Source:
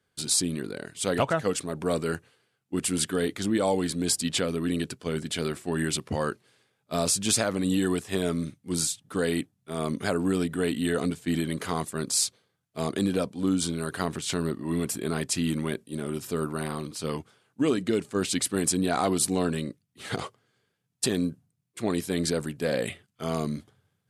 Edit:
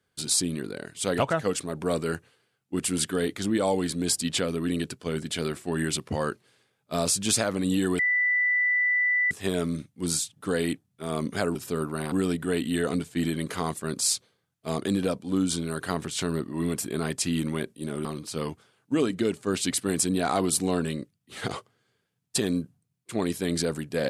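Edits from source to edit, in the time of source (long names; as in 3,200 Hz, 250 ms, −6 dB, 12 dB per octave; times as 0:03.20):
0:07.99: insert tone 1,980 Hz −20.5 dBFS 1.32 s
0:16.16–0:16.73: move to 0:10.23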